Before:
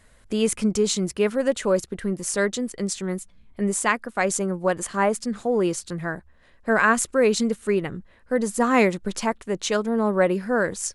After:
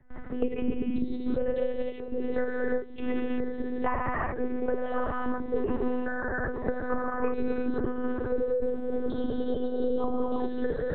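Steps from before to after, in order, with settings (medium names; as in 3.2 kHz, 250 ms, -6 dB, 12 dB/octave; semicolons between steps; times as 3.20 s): resonances exaggerated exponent 1.5; low-pass that closes with the level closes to 1.4 kHz, closed at -18 dBFS; spectral selection erased 7.76–9.95 s, 710–3000 Hz; on a send: echo that smears into a reverb 799 ms, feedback 46%, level -16 dB; on the sum: trance gate ".x..xxx." 141 bpm -24 dB; gated-style reverb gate 410 ms flat, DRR -6 dB; level-controlled noise filter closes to 1.2 kHz, open at -21.5 dBFS; monotone LPC vocoder at 8 kHz 250 Hz; three bands compressed up and down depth 100%; trim -8.5 dB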